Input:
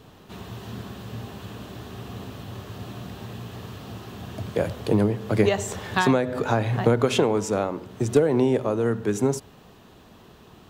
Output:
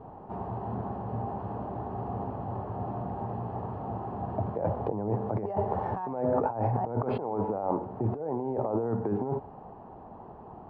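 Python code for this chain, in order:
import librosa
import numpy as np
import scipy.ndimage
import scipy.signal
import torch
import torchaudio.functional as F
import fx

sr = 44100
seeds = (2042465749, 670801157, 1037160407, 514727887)

y = np.repeat(scipy.signal.resample_poly(x, 1, 6), 6)[:len(x)]
y = fx.lowpass_res(y, sr, hz=830.0, q=4.4)
y = fx.over_compress(y, sr, threshold_db=-25.0, ratio=-1.0)
y = F.gain(torch.from_numpy(y), -4.5).numpy()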